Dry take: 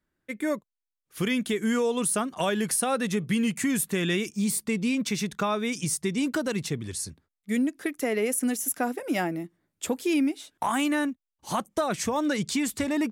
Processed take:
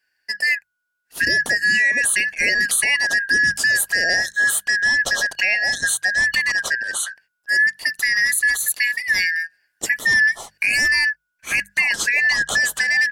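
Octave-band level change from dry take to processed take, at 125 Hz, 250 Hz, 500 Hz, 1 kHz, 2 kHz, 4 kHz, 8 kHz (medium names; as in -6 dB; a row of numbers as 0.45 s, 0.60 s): no reading, -16.0 dB, -7.5 dB, -5.5 dB, +20.5 dB, +11.5 dB, +8.0 dB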